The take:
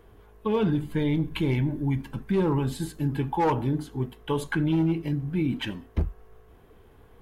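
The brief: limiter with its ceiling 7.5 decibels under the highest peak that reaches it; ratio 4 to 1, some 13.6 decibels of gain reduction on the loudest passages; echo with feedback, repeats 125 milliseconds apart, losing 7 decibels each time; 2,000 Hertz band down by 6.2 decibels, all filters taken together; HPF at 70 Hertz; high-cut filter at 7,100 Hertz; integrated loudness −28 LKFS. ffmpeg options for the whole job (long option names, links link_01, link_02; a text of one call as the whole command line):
ffmpeg -i in.wav -af "highpass=70,lowpass=7100,equalizer=frequency=2000:width_type=o:gain=-8.5,acompressor=threshold=-38dB:ratio=4,alimiter=level_in=8.5dB:limit=-24dB:level=0:latency=1,volume=-8.5dB,aecho=1:1:125|250|375|500|625:0.447|0.201|0.0905|0.0407|0.0183,volume=13dB" out.wav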